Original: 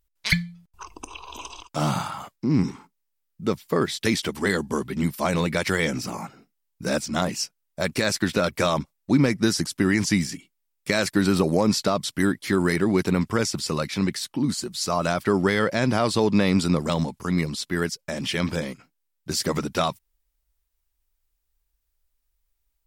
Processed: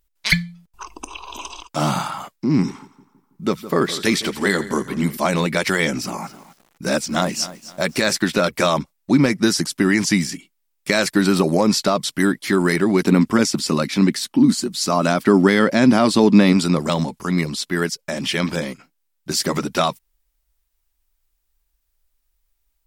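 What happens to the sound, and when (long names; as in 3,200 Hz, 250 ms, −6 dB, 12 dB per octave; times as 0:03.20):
0:02.66–0:05.17: echo with a time of its own for lows and highs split 1,600 Hz, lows 162 ms, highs 86 ms, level −14.5 dB
0:05.97–0:08.21: feedback echo at a low word length 260 ms, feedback 35%, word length 7 bits, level −15 dB
0:13.02–0:16.53: parametric band 250 Hz +8 dB
whole clip: parametric band 93 Hz −14.5 dB 0.62 octaves; notch filter 470 Hz, Q 12; level +5 dB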